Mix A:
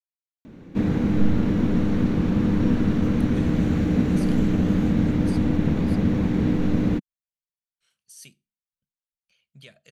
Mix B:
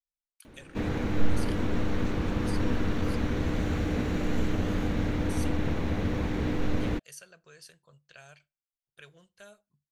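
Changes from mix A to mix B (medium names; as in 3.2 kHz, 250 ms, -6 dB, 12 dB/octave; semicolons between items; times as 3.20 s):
speech: entry -2.80 s; master: add peaking EQ 190 Hz -13 dB 1.6 oct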